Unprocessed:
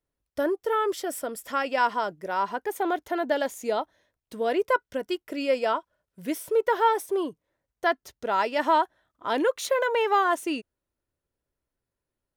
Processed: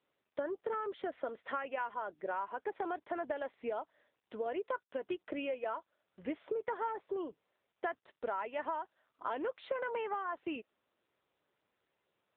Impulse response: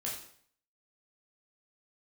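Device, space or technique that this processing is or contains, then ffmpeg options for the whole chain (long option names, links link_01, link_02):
voicemail: -af "highpass=340,lowpass=2700,acompressor=threshold=-34dB:ratio=6" -ar 8000 -c:a libopencore_amrnb -b:a 7950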